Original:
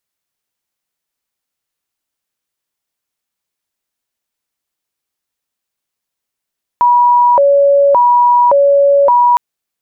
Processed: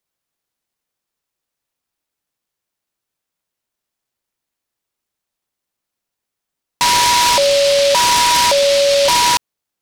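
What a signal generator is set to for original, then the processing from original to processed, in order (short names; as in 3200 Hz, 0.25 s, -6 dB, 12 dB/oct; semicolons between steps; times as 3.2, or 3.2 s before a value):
siren hi-lo 563–969 Hz 0.88/s sine -5.5 dBFS 2.56 s
limiter -9.5 dBFS; noise-modulated delay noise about 3700 Hz, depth 0.13 ms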